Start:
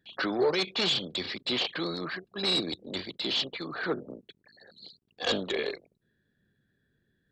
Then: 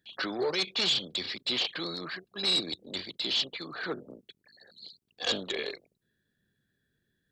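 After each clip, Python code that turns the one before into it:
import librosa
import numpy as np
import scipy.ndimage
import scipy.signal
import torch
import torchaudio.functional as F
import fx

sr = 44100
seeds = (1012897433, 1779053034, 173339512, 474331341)

y = fx.high_shelf(x, sr, hz=2700.0, db=9.0)
y = y * librosa.db_to_amplitude(-5.0)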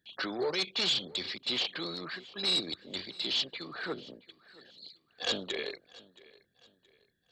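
y = fx.echo_feedback(x, sr, ms=673, feedback_pct=35, wet_db=-21.5)
y = y * librosa.db_to_amplitude(-2.0)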